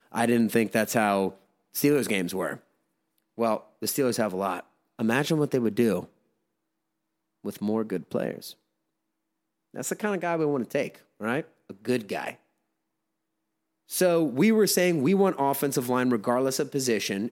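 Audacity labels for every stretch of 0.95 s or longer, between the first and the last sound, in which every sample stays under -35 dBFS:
6.040000	7.450000	silence
8.520000	9.740000	silence
12.310000	13.910000	silence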